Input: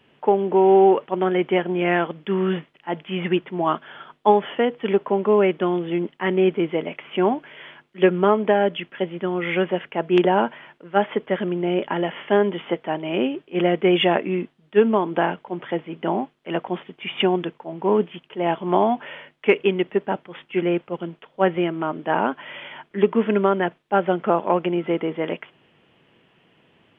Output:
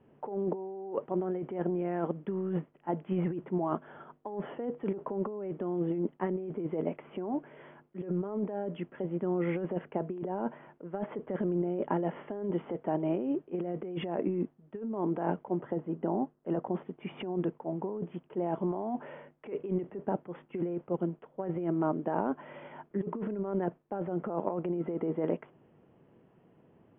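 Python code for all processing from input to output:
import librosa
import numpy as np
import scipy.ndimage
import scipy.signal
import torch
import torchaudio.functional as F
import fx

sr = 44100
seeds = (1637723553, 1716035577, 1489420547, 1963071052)

y = fx.chain(x, sr, fx.air_absorb(metres=230.0),
    fx.notch(hz=2300.0, q=7.5), at=(15.6, 16.75))
y = scipy.signal.sosfilt(scipy.signal.bessel(2, 660.0, 'lowpass', norm='mag', fs=sr, output='sos'), y)
y = fx.over_compress(y, sr, threshold_db=-27.0, ratio=-1.0)
y = F.gain(torch.from_numpy(y), -5.5).numpy()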